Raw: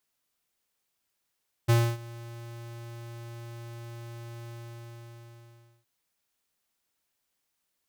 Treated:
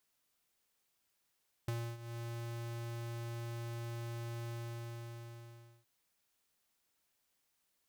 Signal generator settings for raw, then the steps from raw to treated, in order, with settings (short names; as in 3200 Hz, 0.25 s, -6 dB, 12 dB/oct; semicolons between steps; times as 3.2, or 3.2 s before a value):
ADSR square 117 Hz, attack 18 ms, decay 0.274 s, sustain -22.5 dB, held 2.81 s, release 1.36 s -19.5 dBFS
compressor 12:1, threshold -39 dBFS